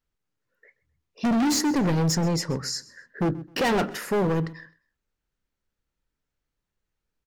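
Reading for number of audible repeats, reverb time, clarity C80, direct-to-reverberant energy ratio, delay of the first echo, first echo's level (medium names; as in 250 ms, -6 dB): 2, no reverb, no reverb, no reverb, 130 ms, -21.0 dB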